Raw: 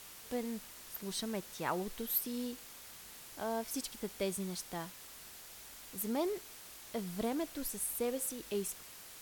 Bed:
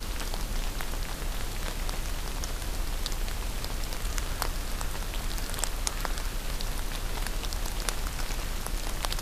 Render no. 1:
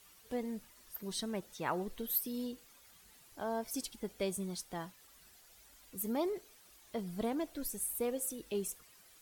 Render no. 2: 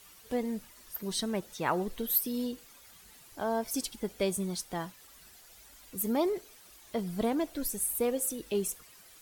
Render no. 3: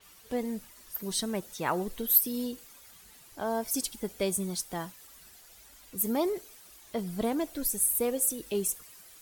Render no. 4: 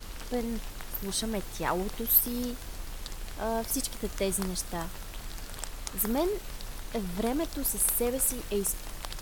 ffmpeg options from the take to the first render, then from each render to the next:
-af "afftdn=nr=12:nf=-52"
-af "volume=6dB"
-af "adynamicequalizer=threshold=0.00316:dfrequency=6100:dqfactor=0.7:tfrequency=6100:tqfactor=0.7:attack=5:release=100:ratio=0.375:range=3:mode=boostabove:tftype=highshelf"
-filter_complex "[1:a]volume=-8dB[a];[0:a][a]amix=inputs=2:normalize=0"

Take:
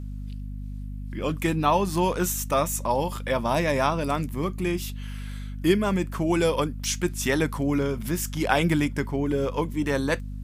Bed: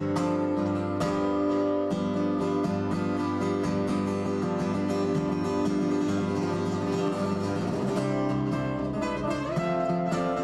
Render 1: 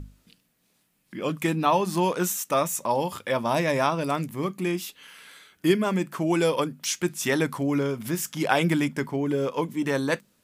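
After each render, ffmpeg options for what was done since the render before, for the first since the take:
-af "bandreject=f=50:t=h:w=6,bandreject=f=100:t=h:w=6,bandreject=f=150:t=h:w=6,bandreject=f=200:t=h:w=6,bandreject=f=250:t=h:w=6"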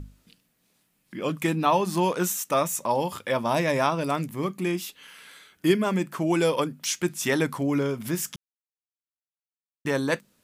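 -filter_complex "[0:a]asplit=3[a][b][c];[a]atrim=end=8.36,asetpts=PTS-STARTPTS,afade=t=out:st=8.356:d=0.004:c=hsin[d];[b]atrim=start=8.36:end=9.85,asetpts=PTS-STARTPTS,volume=0[e];[c]atrim=start=9.85,asetpts=PTS-STARTPTS,afade=t=in:d=0.004:c=hsin[f];[d][e][f]concat=n=3:v=0:a=1"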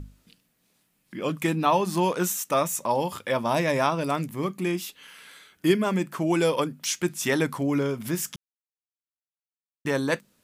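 -af anull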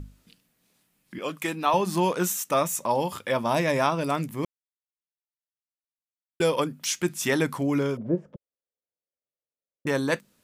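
-filter_complex "[0:a]asettb=1/sr,asplit=3[a][b][c];[a]atrim=end=1.184[d];[b]atrim=start=1.18:end=1.74,asetpts=PTS-STARTPTS,afade=t=in:d=0.004:c=qsin,afade=t=out:st=0.556:d=0.004:c=qsin,highpass=f=530:p=1[e];[c]atrim=start=1.736[f];[d][e]acrossfade=d=0.004:c1=hsin:c2=qsin[g];[g][f]acrossfade=d=0.004:c1=qsin:c2=hsin,asettb=1/sr,asplit=3[h][i][j];[h]atrim=end=7.974[k];[i]atrim=start=7.97:end=9.87,asetpts=PTS-STARTPTS,afade=t=in:d=0.004:c=qsin,afade=t=out:st=1.896:d=0.004:c=qsin,lowpass=f=540:t=q:w=5.2[l];[j]atrim=start=9.866[m];[k][l]acrossfade=d=0.004:c1=hsin:c2=qsin[n];[n][m]acrossfade=d=0.004:c1=qsin:c2=hsin,asplit=3[o][p][q];[o]atrim=end=4.45,asetpts=PTS-STARTPTS,afade=t=out:st=4.446:d=0.004:c=hsin[r];[p]atrim=start=4.45:end=6.4,asetpts=PTS-STARTPTS,volume=0[s];[q]atrim=start=6.4,asetpts=PTS-STARTPTS,afade=t=in:d=0.004:c=hsin[t];[r][s][t]concat=n=3:v=0:a=1"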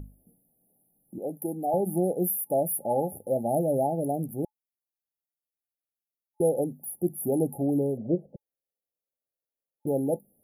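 -af "afftfilt=real='re*(1-between(b*sr/4096,860,9800))':imag='im*(1-between(b*sr/4096,860,9800))':win_size=4096:overlap=0.75,bass=f=250:g=-2,treble=f=4k:g=4"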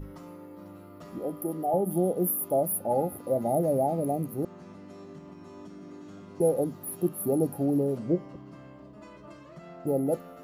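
-filter_complex "[1:a]volume=-19dB[a];[0:a][a]amix=inputs=2:normalize=0"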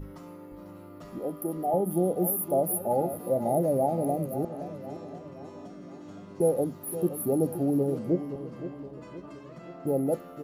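-filter_complex "[0:a]asplit=2[a][b];[b]adelay=520,lowpass=f=3.4k:p=1,volume=-11.5dB,asplit=2[c][d];[d]adelay=520,lowpass=f=3.4k:p=1,volume=0.52,asplit=2[e][f];[f]adelay=520,lowpass=f=3.4k:p=1,volume=0.52,asplit=2[g][h];[h]adelay=520,lowpass=f=3.4k:p=1,volume=0.52,asplit=2[i][j];[j]adelay=520,lowpass=f=3.4k:p=1,volume=0.52,asplit=2[k][l];[l]adelay=520,lowpass=f=3.4k:p=1,volume=0.52[m];[a][c][e][g][i][k][m]amix=inputs=7:normalize=0"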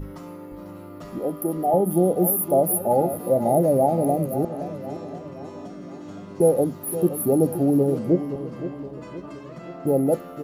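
-af "volume=6.5dB"

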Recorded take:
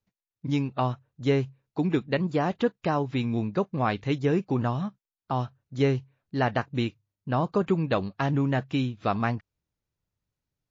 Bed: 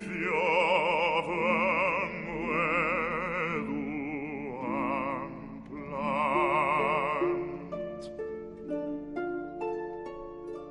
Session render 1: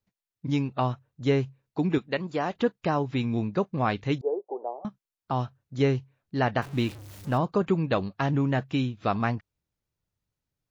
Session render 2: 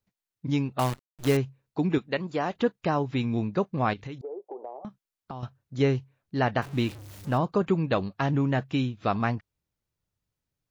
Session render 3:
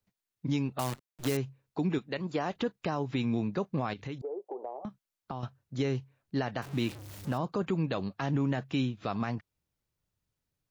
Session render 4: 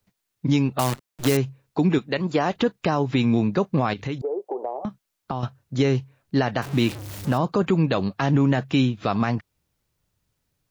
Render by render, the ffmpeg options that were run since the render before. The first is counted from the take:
-filter_complex "[0:a]asettb=1/sr,asplit=3[a][b][c];[a]atrim=end=1.984[d];[b]atrim=start=1.98:end=2.56,asetpts=PTS-STARTPTS,afade=t=in:d=0.004:c=qsin,afade=t=out:st=0.576:d=0.004:c=qsin,equalizer=f=77:w=0.3:g=-10[e];[c]atrim=start=2.556[f];[d][e]acrossfade=d=0.004:c1=hsin:c2=qsin[g];[g][f]acrossfade=d=0.004:c1=qsin:c2=hsin,asettb=1/sr,asplit=3[h][i][j];[h]atrim=end=4.214[k];[i]atrim=start=4.21:end=4.85,asetpts=PTS-STARTPTS,afade=t=in:d=0.004:c=qsin,afade=t=out:st=0.636:d=0.004:c=qsin,asuperpass=centerf=580:order=8:qfactor=1.2[l];[j]atrim=start=4.846[m];[k][l]acrossfade=d=0.004:c1=hsin:c2=qsin[n];[n][m]acrossfade=d=0.004:c1=qsin:c2=hsin,asettb=1/sr,asplit=3[o][p][q];[o]atrim=end=6.624[r];[p]atrim=start=6.62:end=7.38,asetpts=PTS-STARTPTS,afade=t=in:d=0.004:c=qsin,afade=t=out:st=0.756:d=0.004:c=qsin,aeval=exprs='val(0)+0.5*0.0133*sgn(val(0))':c=same[s];[q]atrim=start=7.376[t];[r][s]acrossfade=d=0.004:c1=hsin:c2=qsin[u];[u][t]acrossfade=d=0.004:c1=qsin:c2=hsin"
-filter_complex "[0:a]asettb=1/sr,asplit=3[a][b][c];[a]atrim=end=0.794[d];[b]atrim=start=0.79:end=1.37,asetpts=PTS-STARTPTS,afade=t=in:d=0.004:c=qsin,afade=t=out:st=0.576:d=0.004:c=qsin,acrusher=bits=6:dc=4:mix=0:aa=0.000001[e];[c]atrim=start=1.366[f];[d][e]acrossfade=d=0.004:c1=hsin:c2=qsin[g];[g][f]acrossfade=d=0.004:c1=qsin:c2=hsin,asettb=1/sr,asplit=3[h][i][j];[h]atrim=end=3.934[k];[i]atrim=start=3.93:end=5.43,asetpts=PTS-STARTPTS,afade=t=in:d=0.004:c=qsin,afade=t=out:st=1.496:d=0.004:c=qsin,acompressor=threshold=-33dB:ratio=12:attack=3.2:release=140:knee=1:detection=peak[l];[j]atrim=start=5.426[m];[k][l]acrossfade=d=0.004:c1=hsin:c2=qsin[n];[n][m]acrossfade=d=0.004:c1=qsin:c2=hsin"
-filter_complex "[0:a]acrossover=split=110|4400[a][b][c];[a]acompressor=threshold=-49dB:ratio=6[d];[b]alimiter=limit=-21dB:level=0:latency=1:release=112[e];[d][e][c]amix=inputs=3:normalize=0"
-af "volume=10dB"

